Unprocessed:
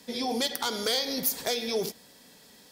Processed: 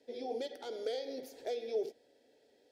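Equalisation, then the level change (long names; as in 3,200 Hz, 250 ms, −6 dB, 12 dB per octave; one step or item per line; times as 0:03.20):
resonant band-pass 490 Hz, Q 0.72
phaser with its sweep stopped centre 450 Hz, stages 4
−4.0 dB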